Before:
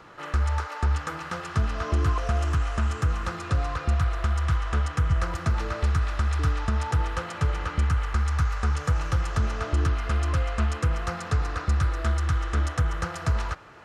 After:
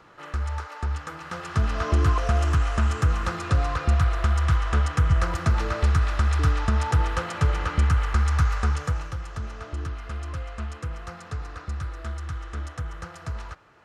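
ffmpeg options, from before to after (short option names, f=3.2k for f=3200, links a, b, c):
-af "volume=3dB,afade=t=in:st=1.19:d=0.58:silence=0.446684,afade=t=out:st=8.54:d=0.6:silence=0.281838"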